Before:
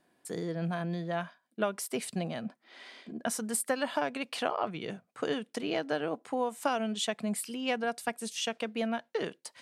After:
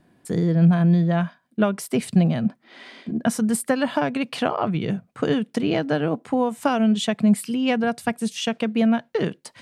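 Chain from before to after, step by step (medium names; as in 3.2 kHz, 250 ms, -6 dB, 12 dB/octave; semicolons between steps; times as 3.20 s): tone controls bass +15 dB, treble -4 dB; trim +7 dB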